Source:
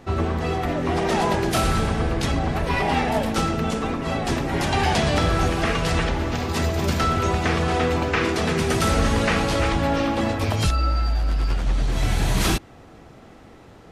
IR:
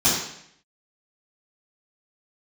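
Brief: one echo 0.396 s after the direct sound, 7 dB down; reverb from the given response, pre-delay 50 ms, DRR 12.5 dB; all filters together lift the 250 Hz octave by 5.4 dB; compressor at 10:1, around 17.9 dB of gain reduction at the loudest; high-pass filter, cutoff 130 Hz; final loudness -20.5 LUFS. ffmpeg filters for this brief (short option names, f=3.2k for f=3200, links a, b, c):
-filter_complex "[0:a]highpass=130,equalizer=f=250:t=o:g=7.5,acompressor=threshold=-34dB:ratio=10,aecho=1:1:396:0.447,asplit=2[a][b];[1:a]atrim=start_sample=2205,adelay=50[c];[b][c]afir=irnorm=-1:irlink=0,volume=-29.5dB[d];[a][d]amix=inputs=2:normalize=0,volume=15.5dB"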